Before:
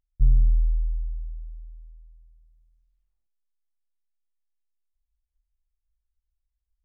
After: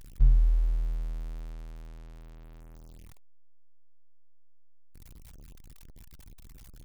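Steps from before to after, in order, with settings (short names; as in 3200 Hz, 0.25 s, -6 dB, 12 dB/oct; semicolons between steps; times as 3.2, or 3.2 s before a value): zero-crossing step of -34.5 dBFS; reverb removal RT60 0.58 s; in parallel at -5 dB: backlash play -35.5 dBFS; on the sum: gain -6 dB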